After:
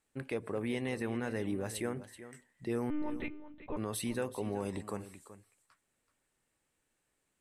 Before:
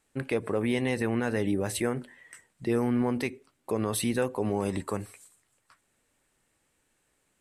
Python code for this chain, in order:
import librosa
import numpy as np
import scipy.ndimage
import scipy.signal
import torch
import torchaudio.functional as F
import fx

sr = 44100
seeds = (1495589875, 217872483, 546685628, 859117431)

p1 = fx.lpc_monotone(x, sr, seeds[0], pitch_hz=300.0, order=10, at=(2.9, 3.77))
p2 = p1 + fx.echo_single(p1, sr, ms=380, db=-14.0, dry=0)
y = p2 * librosa.db_to_amplitude(-8.0)